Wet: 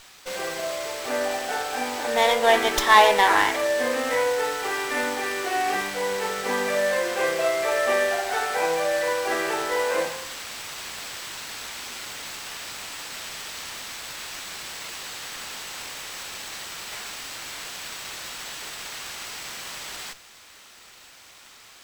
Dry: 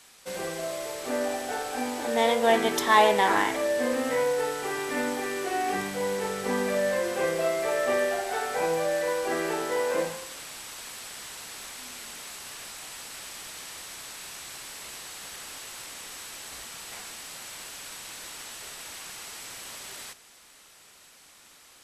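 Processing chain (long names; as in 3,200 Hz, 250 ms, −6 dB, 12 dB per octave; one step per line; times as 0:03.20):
high-pass filter 760 Hz 6 dB per octave
windowed peak hold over 3 samples
level +7 dB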